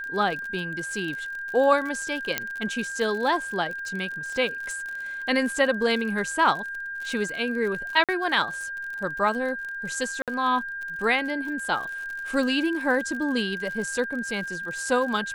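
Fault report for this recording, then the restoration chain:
crackle 54 per s -32 dBFS
whine 1.6 kHz -31 dBFS
2.38 s: pop -7 dBFS
8.04–8.09 s: dropout 47 ms
10.22–10.28 s: dropout 57 ms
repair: de-click; band-stop 1.6 kHz, Q 30; interpolate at 8.04 s, 47 ms; interpolate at 10.22 s, 57 ms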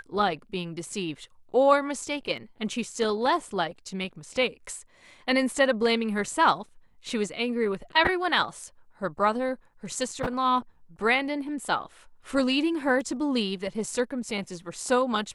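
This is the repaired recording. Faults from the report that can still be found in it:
2.38 s: pop

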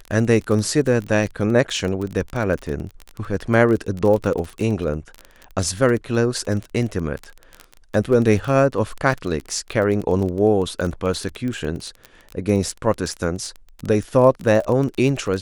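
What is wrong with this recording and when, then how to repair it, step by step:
crackle 22 per s -24 dBFS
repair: de-click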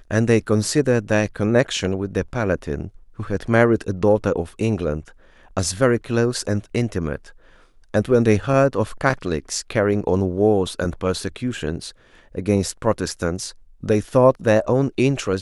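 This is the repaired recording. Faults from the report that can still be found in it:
nothing left

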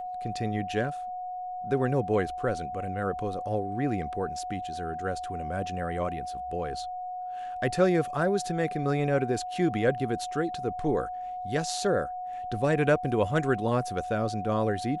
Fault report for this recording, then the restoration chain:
whine 730 Hz -33 dBFS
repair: band-stop 730 Hz, Q 30

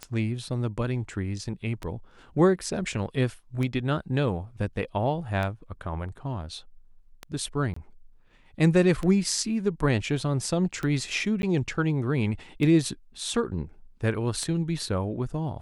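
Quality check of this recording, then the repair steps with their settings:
tick 33 1/3 rpm -18 dBFS
7.74–7.76 s: dropout 24 ms
11.42–11.43 s: dropout 11 ms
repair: de-click; interpolate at 7.74 s, 24 ms; interpolate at 11.42 s, 11 ms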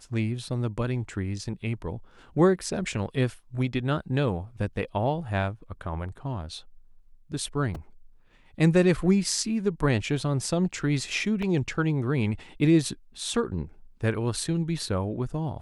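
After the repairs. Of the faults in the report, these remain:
nothing left

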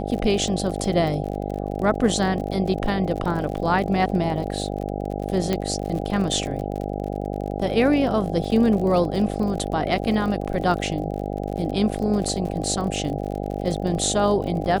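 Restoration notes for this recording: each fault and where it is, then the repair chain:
buzz 50 Hz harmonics 16 -28 dBFS
crackle 48 per s -30 dBFS
5.53 s: pop -9 dBFS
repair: de-click; de-hum 50 Hz, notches 16

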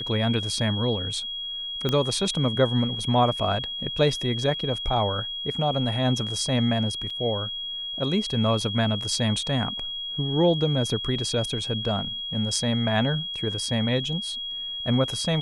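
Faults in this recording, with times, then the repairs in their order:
whine 3.3 kHz -30 dBFS
1.89 s: pop -12 dBFS
7.10 s: dropout 4.6 ms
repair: de-click; band-stop 3.3 kHz, Q 30; interpolate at 7.10 s, 4.6 ms

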